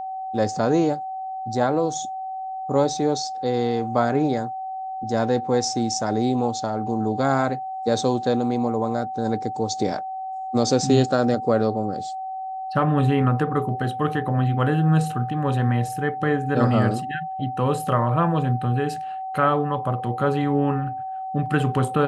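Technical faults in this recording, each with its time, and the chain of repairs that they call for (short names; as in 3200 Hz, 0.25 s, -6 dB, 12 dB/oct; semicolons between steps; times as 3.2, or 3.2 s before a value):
tone 760 Hz -28 dBFS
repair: notch 760 Hz, Q 30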